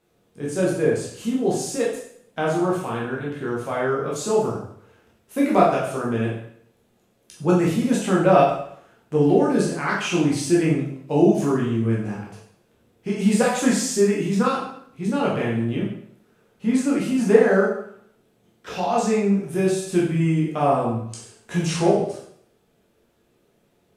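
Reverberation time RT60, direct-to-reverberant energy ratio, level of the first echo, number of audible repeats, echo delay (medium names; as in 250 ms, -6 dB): 0.65 s, -5.5 dB, no echo, no echo, no echo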